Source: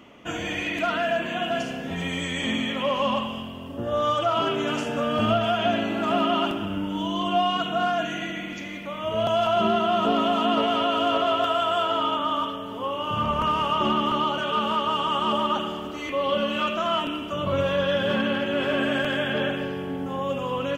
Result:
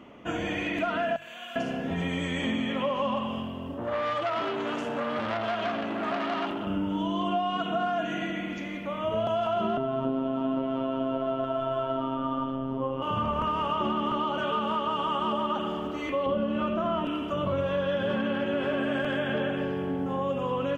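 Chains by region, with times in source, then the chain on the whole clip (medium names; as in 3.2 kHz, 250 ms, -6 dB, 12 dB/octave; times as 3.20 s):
1.16–1.56 s: differentiator + flutter echo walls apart 9.5 m, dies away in 1.4 s
3.74–6.67 s: bass shelf 170 Hz -7 dB + transformer saturation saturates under 1.9 kHz
9.77–13.02 s: tilt EQ -3.5 dB/octave + robot voice 133 Hz
16.26–17.05 s: high-pass 42 Hz + tilt EQ -3 dB/octave
whole clip: treble shelf 2.6 kHz -11 dB; hum notches 50/100/150 Hz; compression, threshold -26 dBFS; trim +1.5 dB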